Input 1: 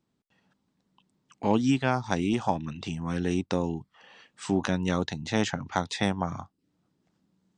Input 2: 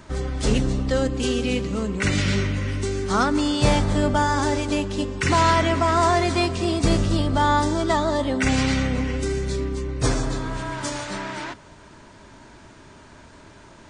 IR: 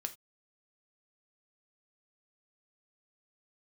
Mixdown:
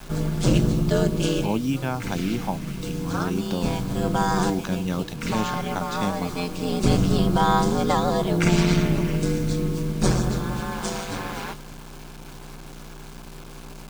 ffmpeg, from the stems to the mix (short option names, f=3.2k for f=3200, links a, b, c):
-filter_complex "[0:a]volume=-3dB,asplit=2[a][b];[1:a]aeval=exprs='val(0)+0.0112*(sin(2*PI*60*n/s)+sin(2*PI*2*60*n/s)/2+sin(2*PI*3*60*n/s)/3+sin(2*PI*4*60*n/s)/4+sin(2*PI*5*60*n/s)/5)':c=same,aeval=exprs='val(0)*sin(2*PI*90*n/s)':c=same,volume=1dB,asplit=2[c][d];[d]volume=-16.5dB[e];[b]apad=whole_len=612786[f];[c][f]sidechaincompress=threshold=-40dB:ratio=4:attack=49:release=678[g];[2:a]atrim=start_sample=2205[h];[e][h]afir=irnorm=-1:irlink=0[i];[a][g][i]amix=inputs=3:normalize=0,adynamicequalizer=threshold=0.0126:dfrequency=170:dqfactor=1.4:tfrequency=170:tqfactor=1.4:attack=5:release=100:ratio=0.375:range=2.5:mode=boostabove:tftype=bell,acrusher=bits=6:mix=0:aa=0.000001,bandreject=f=1.9k:w=7.9"